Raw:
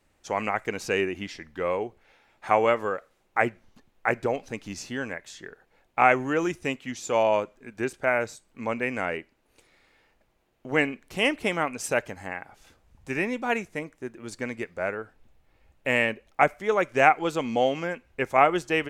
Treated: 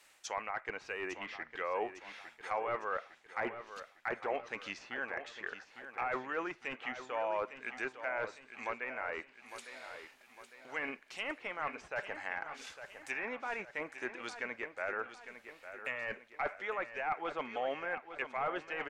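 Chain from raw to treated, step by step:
first-order pre-emphasis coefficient 0.97
mid-hump overdrive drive 15 dB, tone 1,500 Hz, clips at −16.5 dBFS
reversed playback
downward compressor 12 to 1, threshold −45 dBFS, peak gain reduction 18.5 dB
reversed playback
wave folding −38 dBFS
treble cut that deepens with the level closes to 1,400 Hz, closed at −47 dBFS
on a send: repeating echo 855 ms, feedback 48%, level −11 dB
on the sum: level +14.5 dB

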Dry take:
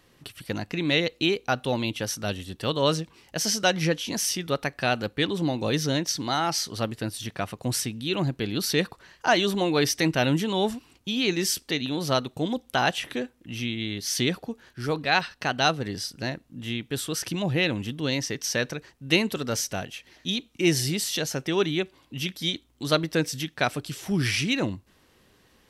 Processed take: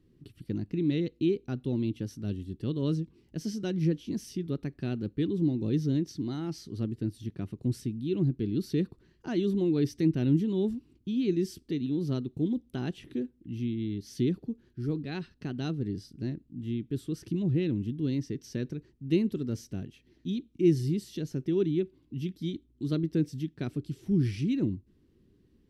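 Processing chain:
drawn EQ curve 370 Hz 0 dB, 530 Hz −17 dB, 760 Hz −23 dB, 4,500 Hz −19 dB, 6,500 Hz −22 dB

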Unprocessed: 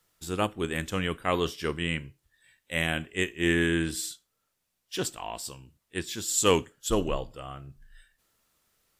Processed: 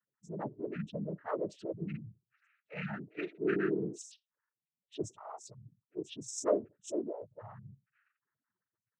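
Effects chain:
spectral peaks only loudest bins 4
cochlear-implant simulation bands 12
level −3.5 dB

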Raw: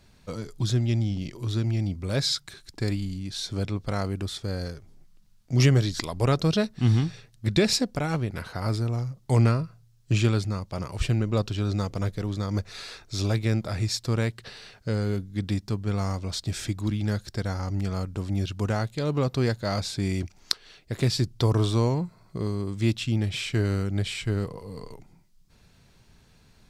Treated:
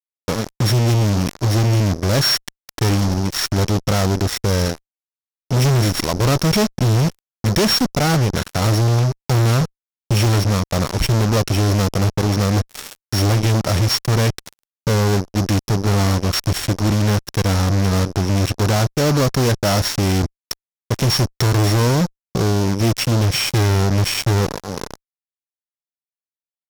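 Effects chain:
samples sorted by size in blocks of 8 samples
downsampling to 22,050 Hz
fuzz pedal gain 36 dB, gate −35 dBFS

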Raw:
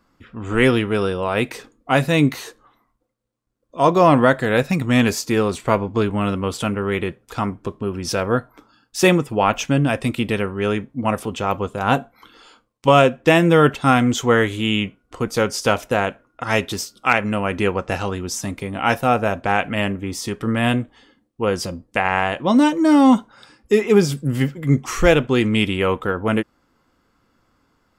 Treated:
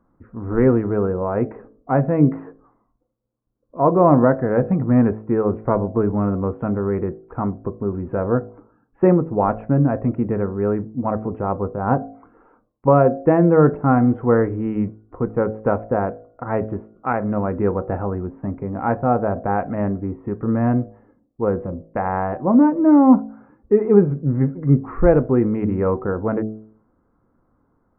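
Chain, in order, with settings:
Gaussian smoothing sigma 7.4 samples
hum removal 54.26 Hz, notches 14
level +2 dB

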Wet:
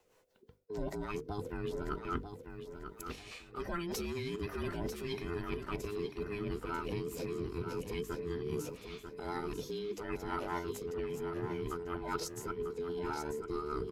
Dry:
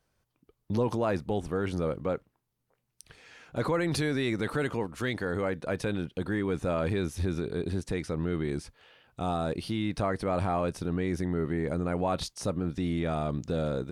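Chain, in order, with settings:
frequency inversion band by band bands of 500 Hz
mains-hum notches 50/100/150/200/250/300 Hz
reversed playback
downward compressor 8 to 1, threshold −40 dBFS, peak gain reduction 17 dB
reversed playback
rotating-speaker cabinet horn 5 Hz
formants moved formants +4 semitones
on a send: repeating echo 943 ms, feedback 29%, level −8 dB
on the sum: level +6.5 dB

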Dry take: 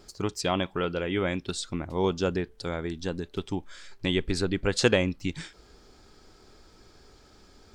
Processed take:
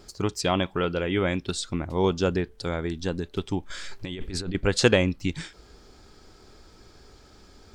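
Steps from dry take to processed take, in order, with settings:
parametric band 70 Hz +2.5 dB 1.9 octaves
0:03.70–0:04.55: compressor whose output falls as the input rises −34 dBFS, ratio −1
level +2.5 dB

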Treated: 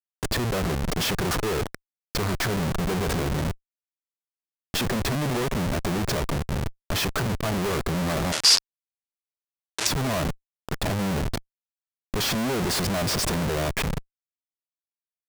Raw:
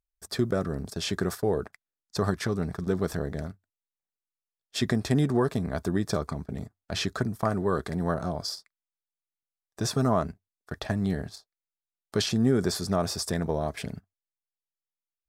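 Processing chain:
comparator with hysteresis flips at −38 dBFS
0:08.32–0:09.87: meter weighting curve ITU-R 468
level +5 dB

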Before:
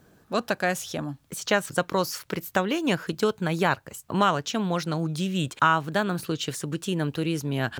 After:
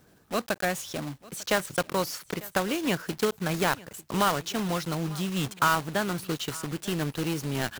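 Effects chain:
one scale factor per block 3 bits
single-tap delay 898 ms −21 dB
level −3 dB

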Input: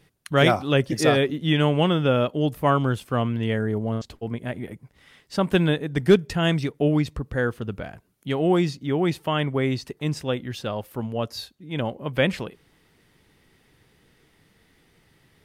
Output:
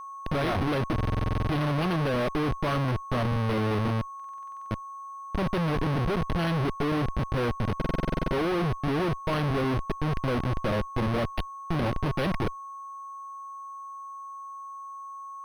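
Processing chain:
adaptive Wiener filter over 15 samples
harmonic generator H 2 −10 dB, 7 −28 dB, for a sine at −6.5 dBFS
comparator with hysteresis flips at −35.5 dBFS
steady tone 1,100 Hz −37 dBFS
buffer that repeats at 0:00.94/0:04.15/0:07.77, samples 2,048, times 11
linearly interpolated sample-rate reduction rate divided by 6×

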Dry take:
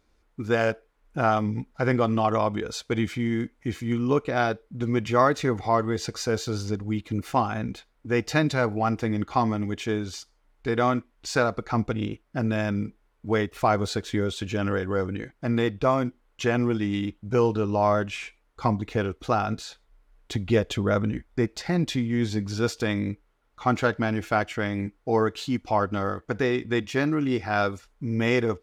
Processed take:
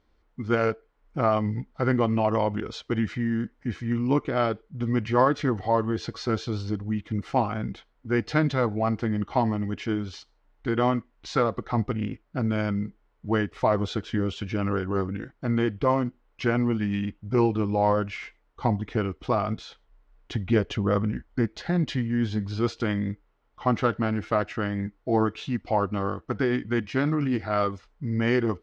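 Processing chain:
formants moved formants −2 semitones
high-frequency loss of the air 120 metres

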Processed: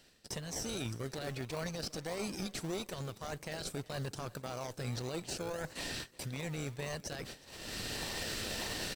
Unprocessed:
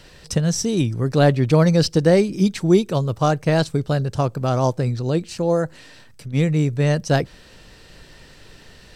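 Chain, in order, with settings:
one-sided soft clipper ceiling −16.5 dBFS
camcorder AGC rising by 13 dB per second
first-order pre-emphasis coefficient 0.97
noise gate −50 dBFS, range −15 dB
high-shelf EQ 3,300 Hz −9 dB
reversed playback
downward compressor 8 to 1, threshold −47 dBFS, peak gain reduction 17 dB
reversed playback
brickwall limiter −43 dBFS, peak gain reduction 11 dB
in parallel at −3 dB: sample-and-hold swept by an LFO 36×, swing 60% 1.7 Hz
on the sum: repeating echo 364 ms, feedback 50%, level −23 dB
level +12 dB

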